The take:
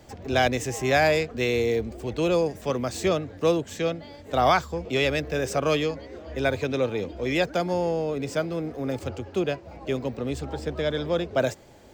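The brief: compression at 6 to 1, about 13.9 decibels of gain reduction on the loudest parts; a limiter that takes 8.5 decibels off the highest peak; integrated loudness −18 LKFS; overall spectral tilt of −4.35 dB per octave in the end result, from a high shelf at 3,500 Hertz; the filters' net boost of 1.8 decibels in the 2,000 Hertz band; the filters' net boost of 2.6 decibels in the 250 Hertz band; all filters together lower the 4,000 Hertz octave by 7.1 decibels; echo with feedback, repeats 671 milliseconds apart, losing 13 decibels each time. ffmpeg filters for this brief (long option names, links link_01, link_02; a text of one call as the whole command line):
ffmpeg -i in.wav -af "equalizer=frequency=250:width_type=o:gain=3.5,equalizer=frequency=2000:width_type=o:gain=6,highshelf=frequency=3500:gain=-6.5,equalizer=frequency=4000:width_type=o:gain=-7.5,acompressor=threshold=-31dB:ratio=6,alimiter=level_in=4.5dB:limit=-24dB:level=0:latency=1,volume=-4.5dB,aecho=1:1:671|1342|2013:0.224|0.0493|0.0108,volume=20dB" out.wav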